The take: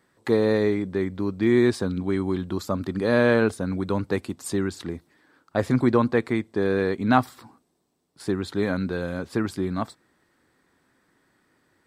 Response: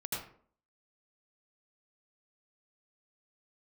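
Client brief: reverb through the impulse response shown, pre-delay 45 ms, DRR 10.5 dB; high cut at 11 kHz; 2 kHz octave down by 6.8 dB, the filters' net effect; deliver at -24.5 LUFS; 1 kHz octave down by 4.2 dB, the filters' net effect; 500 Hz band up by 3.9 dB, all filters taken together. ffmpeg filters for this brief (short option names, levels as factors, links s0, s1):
-filter_complex "[0:a]lowpass=11000,equalizer=f=500:t=o:g=6.5,equalizer=f=1000:t=o:g=-7,equalizer=f=2000:t=o:g=-6.5,asplit=2[s0][s1];[1:a]atrim=start_sample=2205,adelay=45[s2];[s1][s2]afir=irnorm=-1:irlink=0,volume=0.224[s3];[s0][s3]amix=inputs=2:normalize=0,volume=0.75"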